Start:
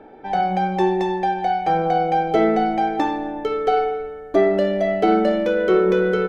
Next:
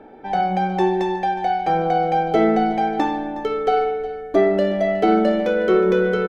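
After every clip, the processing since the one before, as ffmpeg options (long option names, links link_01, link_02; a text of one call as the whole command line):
ffmpeg -i in.wav -af "equalizer=frequency=230:width_type=o:width=0.32:gain=3.5,aecho=1:1:365:0.15" out.wav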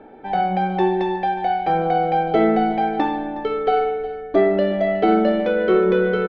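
ffmpeg -i in.wav -af "lowpass=frequency=4200:width=0.5412,lowpass=frequency=4200:width=1.3066" out.wav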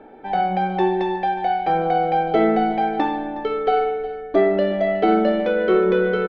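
ffmpeg -i in.wav -af "equalizer=frequency=98:width=0.6:gain=-3.5" out.wav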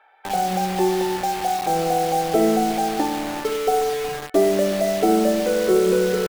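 ffmpeg -i in.wav -filter_complex "[0:a]acrossover=split=920[link_01][link_02];[link_01]acrusher=bits=4:mix=0:aa=0.000001[link_03];[link_02]acompressor=threshold=-37dB:ratio=6[link_04];[link_03][link_04]amix=inputs=2:normalize=0" out.wav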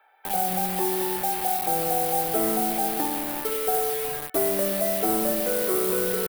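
ffmpeg -i in.wav -filter_complex "[0:a]acrossover=split=650|1600[link_01][link_02][link_03];[link_01]asoftclip=type=tanh:threshold=-20.5dB[link_04];[link_04][link_02][link_03]amix=inputs=3:normalize=0,aexciter=amount=6.3:drive=3.4:freq=9100,volume=-4.5dB" out.wav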